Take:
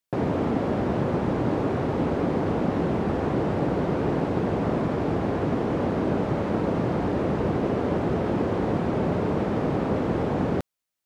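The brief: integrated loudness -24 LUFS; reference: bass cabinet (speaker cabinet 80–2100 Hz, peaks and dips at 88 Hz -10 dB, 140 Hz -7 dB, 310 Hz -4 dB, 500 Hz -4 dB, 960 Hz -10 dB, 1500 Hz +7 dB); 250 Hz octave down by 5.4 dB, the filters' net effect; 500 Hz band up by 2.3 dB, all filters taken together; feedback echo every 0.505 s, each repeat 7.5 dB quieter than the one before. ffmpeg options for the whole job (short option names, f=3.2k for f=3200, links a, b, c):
-af "highpass=f=80:w=0.5412,highpass=f=80:w=1.3066,equalizer=f=88:t=q:w=4:g=-10,equalizer=f=140:t=q:w=4:g=-7,equalizer=f=310:t=q:w=4:g=-4,equalizer=f=500:t=q:w=4:g=-4,equalizer=f=960:t=q:w=4:g=-10,equalizer=f=1.5k:t=q:w=4:g=7,lowpass=f=2.1k:w=0.5412,lowpass=f=2.1k:w=1.3066,equalizer=f=250:t=o:g=-7,equalizer=f=500:t=o:g=8.5,aecho=1:1:505|1010|1515|2020|2525:0.422|0.177|0.0744|0.0312|0.0131,volume=2dB"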